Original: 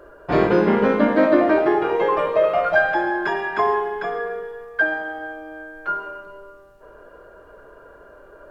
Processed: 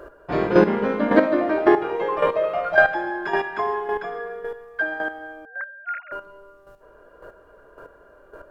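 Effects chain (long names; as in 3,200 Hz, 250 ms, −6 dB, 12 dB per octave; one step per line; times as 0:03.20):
0:05.45–0:06.12: three sine waves on the formant tracks
square-wave tremolo 1.8 Hz, depth 65%, duty 15%
level +4 dB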